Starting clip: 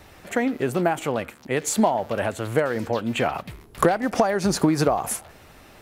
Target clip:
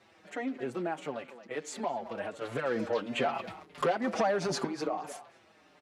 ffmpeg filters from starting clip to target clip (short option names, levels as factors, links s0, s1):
-filter_complex "[0:a]asettb=1/sr,asplit=3[s0][s1][s2];[s0]atrim=end=2.414[s3];[s1]atrim=start=2.41:end=4.67,asetpts=PTS-STARTPTS,afade=t=in:d=0.004:c=qsin,afade=t=out:st=2.256:d=0.004:c=qsin,acontrast=79[s4];[s2]atrim=start=4.666[s5];[s3][s4]acrossfade=d=0.004:c1=hsin:c2=qsin[s6];[s6][s5]acrossfade=d=0.004:c1=qsin:c2=hsin,asoftclip=type=tanh:threshold=0.355,highpass=190,lowpass=6000,asplit=2[s7][s8];[s8]adelay=220,highpass=300,lowpass=3400,asoftclip=type=hard:threshold=0.168,volume=0.224[s9];[s7][s9]amix=inputs=2:normalize=0,asplit=2[s10][s11];[s11]adelay=5.5,afreqshift=-1.5[s12];[s10][s12]amix=inputs=2:normalize=1,volume=0.376"